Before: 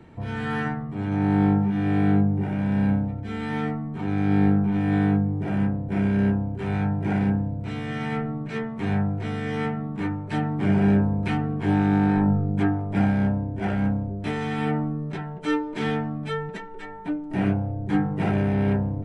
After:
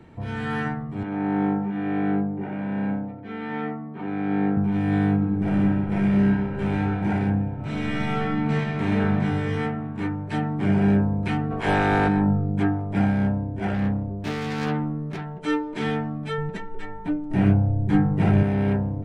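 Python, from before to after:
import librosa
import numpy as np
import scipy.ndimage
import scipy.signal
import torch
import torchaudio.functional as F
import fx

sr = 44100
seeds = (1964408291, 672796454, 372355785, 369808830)

y = fx.bandpass_edges(x, sr, low_hz=220.0, high_hz=2600.0, at=(1.03, 4.57))
y = fx.reverb_throw(y, sr, start_s=5.13, length_s=1.76, rt60_s=2.7, drr_db=-0.5)
y = fx.reverb_throw(y, sr, start_s=7.51, length_s=1.58, rt60_s=2.8, drr_db=-4.5)
y = fx.spec_clip(y, sr, under_db=18, at=(11.5, 12.07), fade=0.02)
y = fx.self_delay(y, sr, depth_ms=0.34, at=(13.74, 15.25))
y = fx.low_shelf(y, sr, hz=140.0, db=11.5, at=(16.38, 18.43))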